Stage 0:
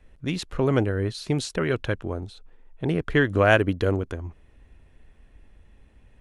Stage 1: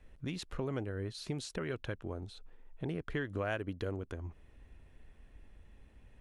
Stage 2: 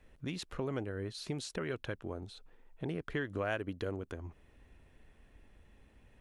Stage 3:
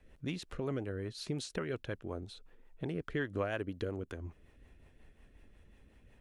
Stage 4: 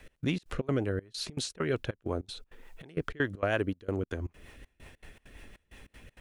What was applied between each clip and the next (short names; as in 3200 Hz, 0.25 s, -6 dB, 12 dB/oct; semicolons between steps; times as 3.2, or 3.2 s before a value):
compressor 2.5:1, threshold -35 dBFS, peak gain reduction 15 dB; gain -4 dB
low shelf 97 Hz -7 dB; gain +1 dB
rotary speaker horn 5.5 Hz; gain +2 dB
step gate "x..xx.xx.xxx" 197 bpm -24 dB; mismatched tape noise reduction encoder only; gain +8 dB